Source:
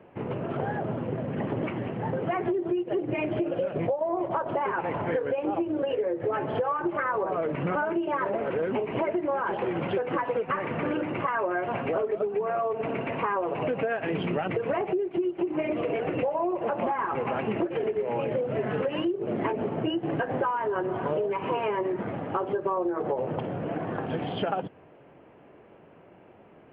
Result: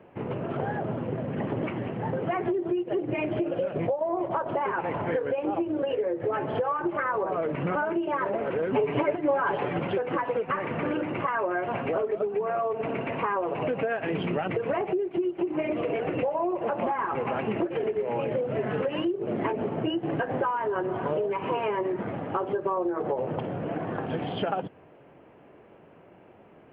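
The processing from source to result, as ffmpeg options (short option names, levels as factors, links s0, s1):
-filter_complex "[0:a]asettb=1/sr,asplit=3[s0][s1][s2];[s0]atrim=end=8.724[s3];[s1]atrim=start=8.72:end=9.79,asetpts=PTS-STARTPTS,afade=t=in:d=0.004:c=qsin,afade=t=out:st=1.066:d=0.004:c=qsin,aecho=1:1:6.9:0.93,atrim=end_sample=47187[s4];[s2]atrim=start=9.786[s5];[s3][s4]acrossfade=d=0.004:c1=hsin:c2=qsin[s6];[s6][s5]acrossfade=d=0.004:c1=qsin:c2=hsin"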